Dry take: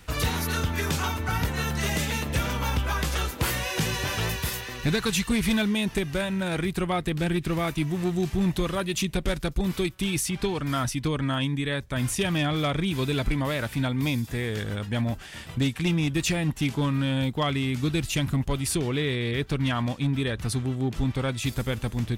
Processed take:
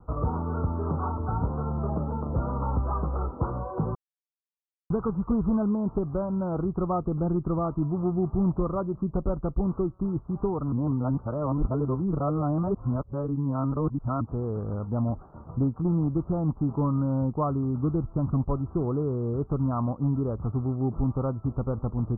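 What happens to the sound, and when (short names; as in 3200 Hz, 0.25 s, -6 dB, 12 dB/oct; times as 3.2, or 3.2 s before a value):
3.95–4.9 mute
10.72–14.21 reverse
whole clip: steep low-pass 1300 Hz 96 dB/oct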